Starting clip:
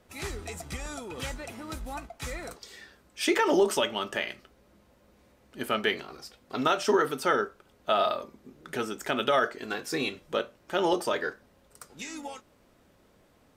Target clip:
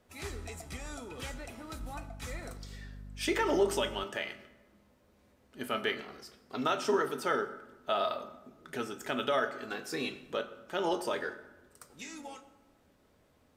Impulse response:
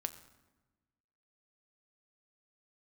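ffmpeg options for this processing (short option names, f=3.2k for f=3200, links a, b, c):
-filter_complex "[1:a]atrim=start_sample=2205[a];[0:a][a]afir=irnorm=-1:irlink=0,asettb=1/sr,asplit=3[b][c][d];[b]atrim=end=1.794[e];[c]atrim=start=1.79:end=4.04,asetpts=PTS-STARTPTS,afade=t=in:d=0.004:c=qsin,afade=t=out:st=2.246:d=0.004:c=qsin,aeval=exprs='val(0)+0.01*(sin(2*PI*50*n/s)+sin(2*PI*2*50*n/s)/2+sin(2*PI*3*50*n/s)/3+sin(2*PI*4*50*n/s)/4+sin(2*PI*5*50*n/s)/5)':c=same[f];[d]atrim=start=4.036[g];[e][f]acrossfade=d=0.004:c1=hsin:c2=qsin[h];[h][g]acrossfade=d=0.004:c1=qsin:c2=hsin,volume=-4.5dB"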